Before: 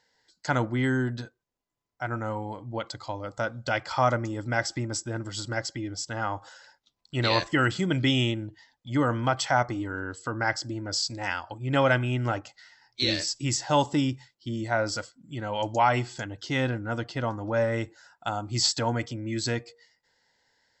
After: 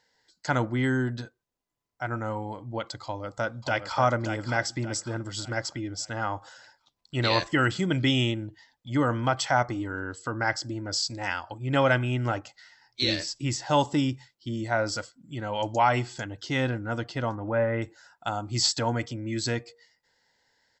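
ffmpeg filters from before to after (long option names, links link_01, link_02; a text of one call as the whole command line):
ffmpeg -i in.wav -filter_complex "[0:a]asplit=2[link_01][link_02];[link_02]afade=type=in:start_time=3.04:duration=0.01,afade=type=out:start_time=3.98:duration=0.01,aecho=0:1:580|1160|1740|2320|2900:0.446684|0.178673|0.0714694|0.0285877|0.0114351[link_03];[link_01][link_03]amix=inputs=2:normalize=0,asettb=1/sr,asplit=3[link_04][link_05][link_06];[link_04]atrim=end=13.154[link_07];[link_05]atrim=start=13.15:end=13.66,asetpts=PTS-STARTPTS,afade=type=in:duration=0.004:curve=qsin,afade=type=out:start_time=0.506:duration=0.004:curve=qsin,highshelf=frequency=6500:gain=-10[link_08];[link_06]atrim=start=13.656[link_09];[link_07][link_08]acrossfade=duration=0.004:curve1=hsin:curve2=qsin[link_10];[link_10][link_09]acrossfade=duration=0.004:curve1=qsin:curve2=hsin,asettb=1/sr,asplit=3[link_11][link_12][link_13];[link_11]atrim=end=17.354[link_14];[link_12]atrim=start=17.35:end=17.82,asetpts=PTS-STARTPTS,afade=type=in:duration=0.004:curve=qsin,afade=type=out:start_time=0.466:duration=0.004:curve=qsin,lowpass=frequency=2600:width=0.5412,lowpass=frequency=2600:width=1.3066[link_15];[link_13]atrim=start=17.816[link_16];[link_14][link_15]acrossfade=duration=0.004:curve1=hsin:curve2=qsin[link_17];[link_17][link_16]acrossfade=duration=0.004:curve1=qsin:curve2=hsin" out.wav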